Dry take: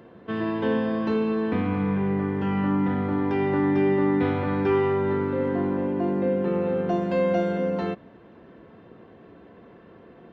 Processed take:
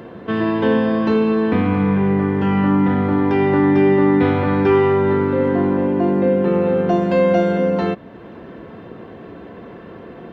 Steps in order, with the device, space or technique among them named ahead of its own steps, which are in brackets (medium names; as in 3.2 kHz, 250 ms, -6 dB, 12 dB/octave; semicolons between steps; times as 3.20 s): parallel compression (in parallel at -1 dB: compression, threshold -42 dBFS, peak gain reduction 21.5 dB); on the sum: trim +7 dB